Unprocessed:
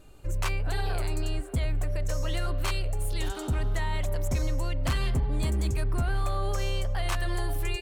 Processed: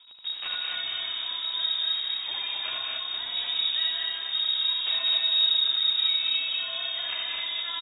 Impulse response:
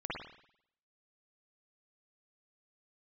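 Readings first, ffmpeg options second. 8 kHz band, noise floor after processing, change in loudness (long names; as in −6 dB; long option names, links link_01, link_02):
below −40 dB, −36 dBFS, +5.5 dB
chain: -filter_complex "[0:a]acompressor=threshold=-31dB:ratio=3,acrusher=bits=8:dc=4:mix=0:aa=0.000001,aecho=1:1:75.8|256.6:0.794|0.631,asplit=2[link_01][link_02];[1:a]atrim=start_sample=2205,atrim=end_sample=6174,adelay=146[link_03];[link_02][link_03]afir=irnorm=-1:irlink=0,volume=-4dB[link_04];[link_01][link_04]amix=inputs=2:normalize=0,lowpass=frequency=3200:width_type=q:width=0.5098,lowpass=frequency=3200:width_type=q:width=0.6013,lowpass=frequency=3200:width_type=q:width=0.9,lowpass=frequency=3200:width_type=q:width=2.563,afreqshift=-3800"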